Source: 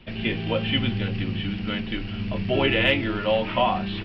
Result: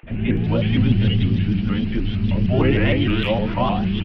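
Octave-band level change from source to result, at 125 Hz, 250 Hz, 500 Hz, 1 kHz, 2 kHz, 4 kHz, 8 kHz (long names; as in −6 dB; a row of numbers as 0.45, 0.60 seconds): +10.0 dB, +7.5 dB, +1.0 dB, −0.5 dB, −2.0 dB, −2.5 dB, can't be measured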